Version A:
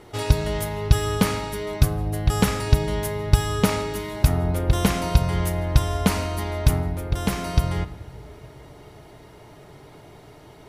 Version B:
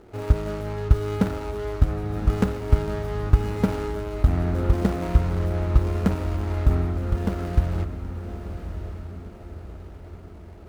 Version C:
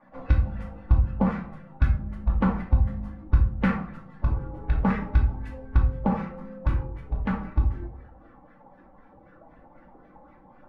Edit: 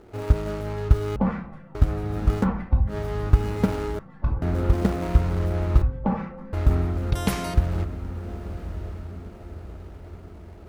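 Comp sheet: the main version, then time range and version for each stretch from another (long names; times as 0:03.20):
B
0:01.16–0:01.75: punch in from C
0:02.43–0:02.92: punch in from C, crossfade 0.10 s
0:03.99–0:04.42: punch in from C
0:05.82–0:06.53: punch in from C
0:07.11–0:07.54: punch in from A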